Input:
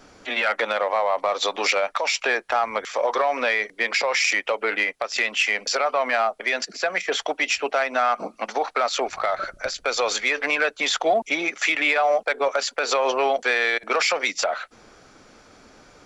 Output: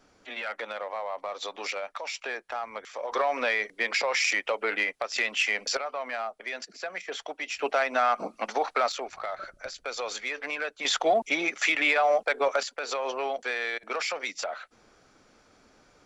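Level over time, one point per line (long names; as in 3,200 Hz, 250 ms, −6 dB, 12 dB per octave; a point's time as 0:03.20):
−12 dB
from 0:03.12 −4.5 dB
from 0:05.77 −11.5 dB
from 0:07.59 −3 dB
from 0:08.92 −10.5 dB
from 0:10.85 −3 dB
from 0:12.63 −9.5 dB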